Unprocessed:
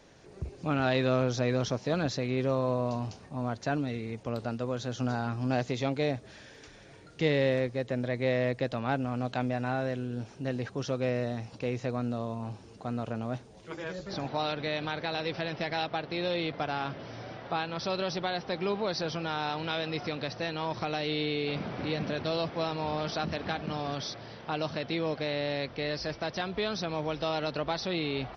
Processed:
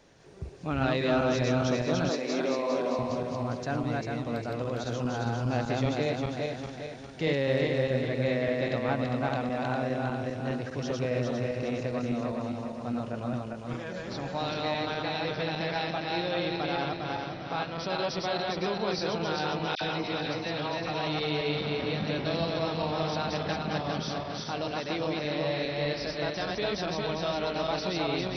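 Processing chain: regenerating reverse delay 0.202 s, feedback 68%, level -1 dB; 2.09–2.99 HPF 230 Hz 24 dB/oct; 19.75–21.07 dispersion lows, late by 61 ms, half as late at 1900 Hz; gain -2 dB

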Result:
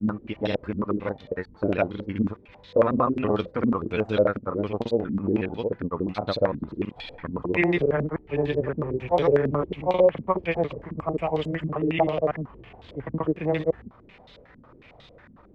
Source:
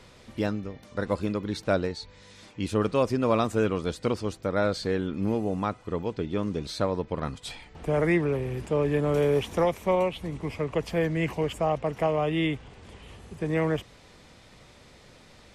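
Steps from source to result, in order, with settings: slices in reverse order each 0.231 s, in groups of 3; grains; stepped low-pass 11 Hz 240–3700 Hz

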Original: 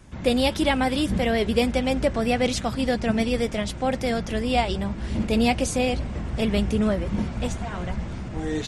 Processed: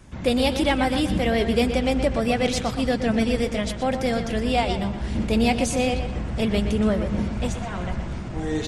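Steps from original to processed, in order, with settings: in parallel at -7.5 dB: soft clip -20.5 dBFS, distortion -12 dB; on the sum: darkening echo 0.122 s, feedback 43%, low-pass 4800 Hz, level -8.5 dB; gain -2 dB

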